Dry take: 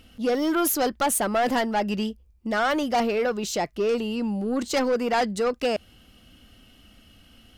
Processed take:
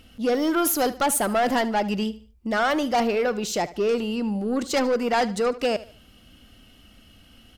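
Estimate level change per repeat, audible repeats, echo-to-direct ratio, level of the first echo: -9.5 dB, 2, -16.5 dB, -17.0 dB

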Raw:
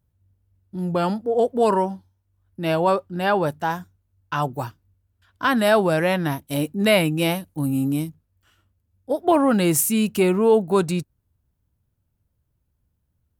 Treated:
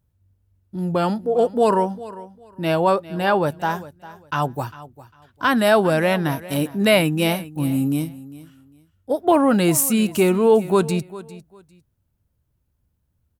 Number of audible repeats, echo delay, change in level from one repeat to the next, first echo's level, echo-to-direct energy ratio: 2, 0.401 s, -13.0 dB, -17.5 dB, -17.5 dB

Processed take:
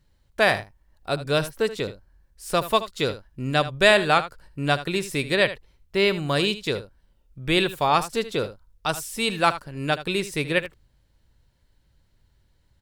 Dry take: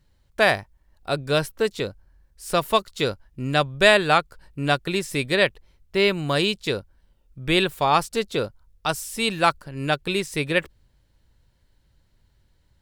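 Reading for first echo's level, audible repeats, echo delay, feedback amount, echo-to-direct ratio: -14.0 dB, 1, 77 ms, no steady repeat, -14.0 dB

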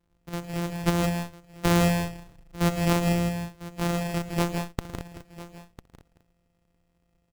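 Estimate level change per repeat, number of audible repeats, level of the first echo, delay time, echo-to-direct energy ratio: no steady repeat, 9, -18.5 dB, 64 ms, -3.5 dB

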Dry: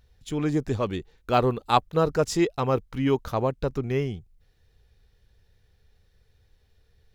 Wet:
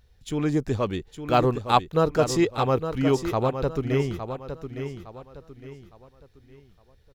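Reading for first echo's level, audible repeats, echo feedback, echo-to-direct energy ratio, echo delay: -9.0 dB, 3, 34%, -8.5 dB, 0.861 s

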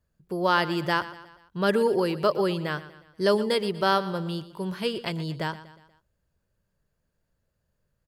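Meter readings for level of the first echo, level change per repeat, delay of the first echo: -16.0 dB, -6.0 dB, 0.12 s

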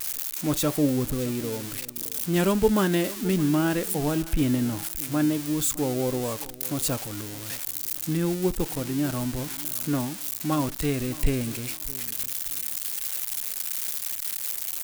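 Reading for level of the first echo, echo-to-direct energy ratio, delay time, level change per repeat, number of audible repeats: -18.5 dB, -18.0 dB, 0.614 s, -11.5 dB, 2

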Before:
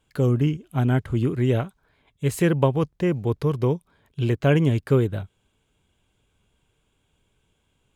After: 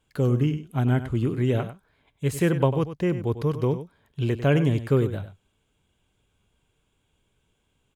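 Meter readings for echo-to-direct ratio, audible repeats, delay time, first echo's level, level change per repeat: -12.0 dB, 1, 98 ms, -12.0 dB, no steady repeat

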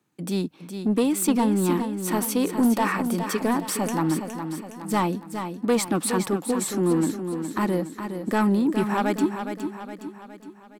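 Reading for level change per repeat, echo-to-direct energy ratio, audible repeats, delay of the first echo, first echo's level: -6.0 dB, -7.0 dB, 5, 0.414 s, -8.0 dB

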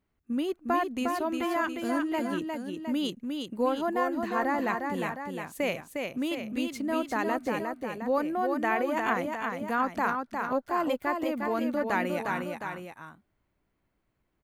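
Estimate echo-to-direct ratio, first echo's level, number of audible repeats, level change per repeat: -3.0 dB, -4.5 dB, 2, -4.5 dB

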